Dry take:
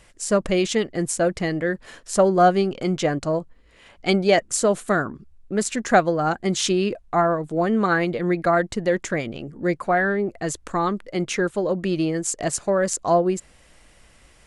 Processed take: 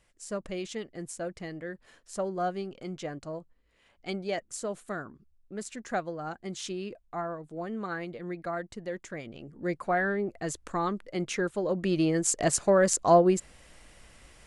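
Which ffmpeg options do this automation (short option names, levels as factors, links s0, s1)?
-af "volume=0.891,afade=t=in:st=9.12:d=0.81:silence=0.398107,afade=t=in:st=11.6:d=0.7:silence=0.501187"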